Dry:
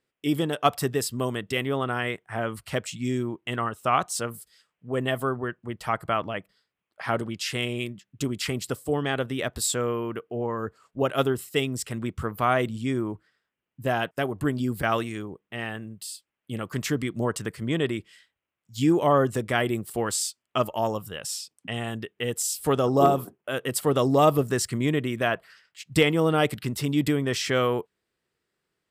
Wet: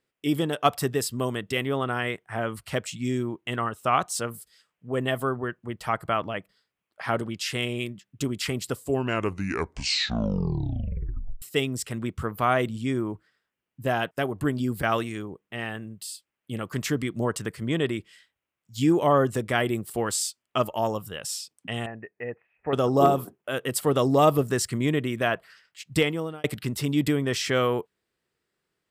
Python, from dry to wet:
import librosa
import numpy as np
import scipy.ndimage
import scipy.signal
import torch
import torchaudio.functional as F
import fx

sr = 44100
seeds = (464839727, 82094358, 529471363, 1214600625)

y = fx.cheby_ripple(x, sr, hz=2600.0, ripple_db=9, at=(21.86, 22.73))
y = fx.edit(y, sr, fx.tape_stop(start_s=8.71, length_s=2.71),
    fx.fade_out_span(start_s=25.87, length_s=0.57), tone=tone)